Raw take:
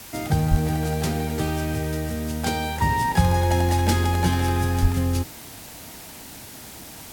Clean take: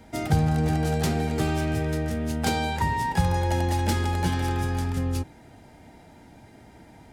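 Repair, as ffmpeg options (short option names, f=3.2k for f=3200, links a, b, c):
-filter_complex "[0:a]asplit=3[a][b][c];[a]afade=t=out:st=0.5:d=0.02[d];[b]highpass=f=140:w=0.5412,highpass=f=140:w=1.3066,afade=t=in:st=0.5:d=0.02,afade=t=out:st=0.62:d=0.02[e];[c]afade=t=in:st=0.62:d=0.02[f];[d][e][f]amix=inputs=3:normalize=0,asplit=3[g][h][i];[g]afade=t=out:st=4.81:d=0.02[j];[h]highpass=f=140:w=0.5412,highpass=f=140:w=1.3066,afade=t=in:st=4.81:d=0.02,afade=t=out:st=4.93:d=0.02[k];[i]afade=t=in:st=4.93:d=0.02[l];[j][k][l]amix=inputs=3:normalize=0,afwtdn=0.0089,asetnsamples=n=441:p=0,asendcmd='2.82 volume volume -4dB',volume=0dB"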